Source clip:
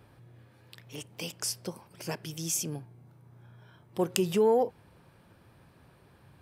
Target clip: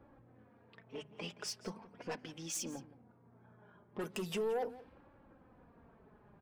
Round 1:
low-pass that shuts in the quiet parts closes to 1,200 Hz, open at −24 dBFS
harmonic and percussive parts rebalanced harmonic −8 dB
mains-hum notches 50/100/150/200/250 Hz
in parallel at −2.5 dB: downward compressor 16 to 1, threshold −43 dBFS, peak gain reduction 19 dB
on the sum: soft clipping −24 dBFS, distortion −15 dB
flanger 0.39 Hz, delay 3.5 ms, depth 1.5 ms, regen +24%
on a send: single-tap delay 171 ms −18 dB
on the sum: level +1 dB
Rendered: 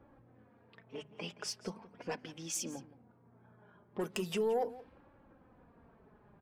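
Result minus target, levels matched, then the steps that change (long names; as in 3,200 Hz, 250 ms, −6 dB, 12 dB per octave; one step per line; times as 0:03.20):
soft clipping: distortion −6 dB
change: soft clipping −31 dBFS, distortion −9 dB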